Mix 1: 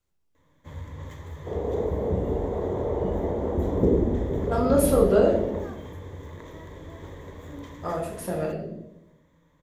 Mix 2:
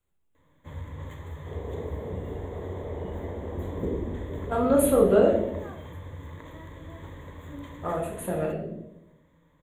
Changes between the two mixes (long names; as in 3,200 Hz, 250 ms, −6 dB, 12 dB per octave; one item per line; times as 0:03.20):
second sound −9.5 dB
master: add Butterworth band-reject 5,200 Hz, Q 1.7